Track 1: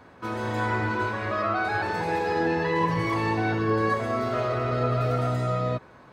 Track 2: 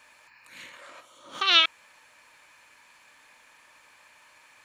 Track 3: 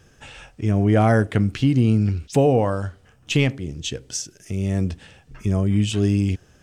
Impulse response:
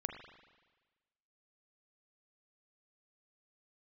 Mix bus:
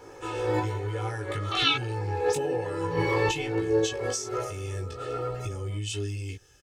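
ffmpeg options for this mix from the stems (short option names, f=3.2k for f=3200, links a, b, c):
-filter_complex "[0:a]equalizer=f=450:w=0.78:g=8.5,volume=-1dB,afade=t=out:st=3.91:d=0.61:silence=0.375837[a];[1:a]adelay=100,volume=-5.5dB[b];[2:a]highshelf=f=2.1k:g=11,acompressor=threshold=-21dB:ratio=6,volume=-8.5dB,asplit=2[c][d];[d]apad=whole_len=270101[e];[a][e]sidechaincompress=threshold=-45dB:ratio=8:attack=7.1:release=130[f];[f][b][c]amix=inputs=3:normalize=0,aecho=1:1:2.3:0.98,flanger=delay=17.5:depth=2.3:speed=1.1"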